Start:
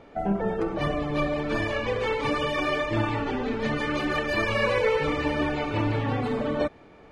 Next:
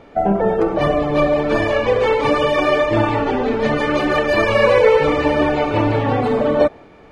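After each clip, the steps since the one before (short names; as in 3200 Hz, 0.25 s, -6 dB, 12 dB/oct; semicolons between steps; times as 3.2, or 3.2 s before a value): dynamic EQ 610 Hz, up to +7 dB, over -39 dBFS, Q 0.84; gain +6 dB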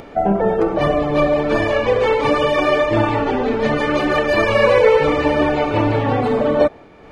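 upward compressor, threshold -31 dBFS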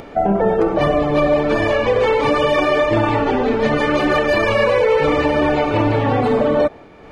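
limiter -8.5 dBFS, peak gain reduction 6.5 dB; gain +1.5 dB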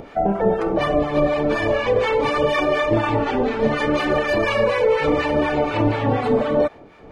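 harmonic tremolo 4.1 Hz, depth 70%, crossover 840 Hz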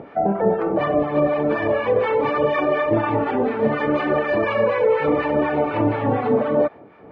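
BPF 110–2000 Hz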